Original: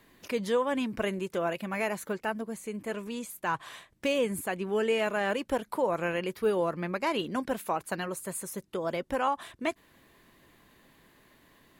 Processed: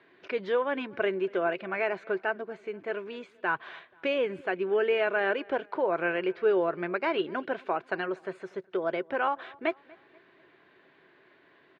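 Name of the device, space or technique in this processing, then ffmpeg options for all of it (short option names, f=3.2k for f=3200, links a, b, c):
kitchen radio: -filter_complex "[0:a]highpass=170,equalizer=f=220:t=q:w=4:g=-8,equalizer=f=380:t=q:w=4:g=10,equalizer=f=670:t=q:w=4:g=5,equalizer=f=1.5k:t=q:w=4:g=9,equalizer=f=2.3k:t=q:w=4:g=4,lowpass=f=3.8k:w=0.5412,lowpass=f=3.8k:w=1.3066,asplit=2[a][b];[b]adelay=241,lowpass=f=3.7k:p=1,volume=-24dB,asplit=2[c][d];[d]adelay=241,lowpass=f=3.7k:p=1,volume=0.44,asplit=2[e][f];[f]adelay=241,lowpass=f=3.7k:p=1,volume=0.44[g];[a][c][e][g]amix=inputs=4:normalize=0,volume=-2.5dB"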